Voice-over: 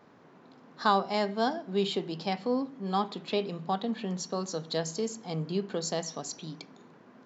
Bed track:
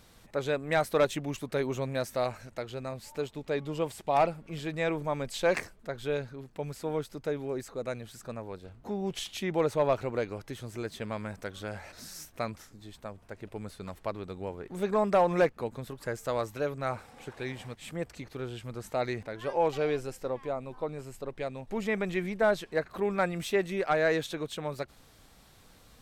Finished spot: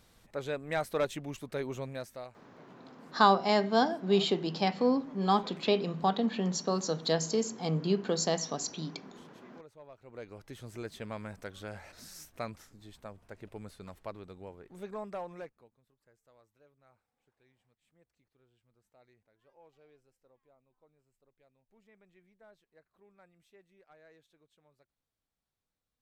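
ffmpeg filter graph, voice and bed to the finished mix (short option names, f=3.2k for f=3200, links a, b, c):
-filter_complex "[0:a]adelay=2350,volume=2.5dB[a];[1:a]volume=16dB,afade=t=out:st=1.8:d=0.59:silence=0.0944061,afade=t=in:st=10:d=0.68:silence=0.0841395,afade=t=out:st=13.44:d=2.3:silence=0.0354813[b];[a][b]amix=inputs=2:normalize=0"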